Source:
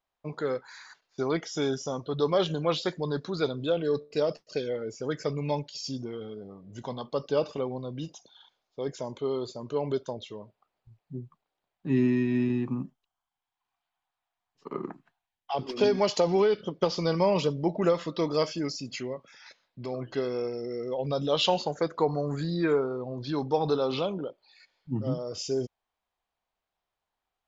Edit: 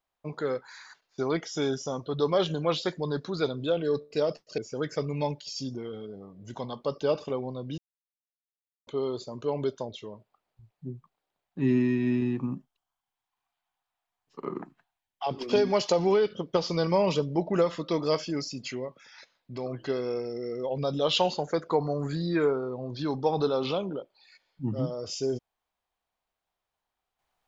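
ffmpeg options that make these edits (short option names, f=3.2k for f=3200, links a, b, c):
-filter_complex "[0:a]asplit=4[a][b][c][d];[a]atrim=end=4.582[e];[b]atrim=start=4.858:end=8.06,asetpts=PTS-STARTPTS,afade=t=out:st=3.198:d=0.004:c=hsin[f];[c]atrim=start=8.06:end=9.15,asetpts=PTS-STARTPTS,volume=0[g];[d]atrim=start=9.15,asetpts=PTS-STARTPTS,afade=t=in:d=0.004:c=hsin[h];[f][g][h]concat=n=3:v=0:a=1[i];[e][i]acrossfade=d=0.004:c1=hsin:c2=hsin"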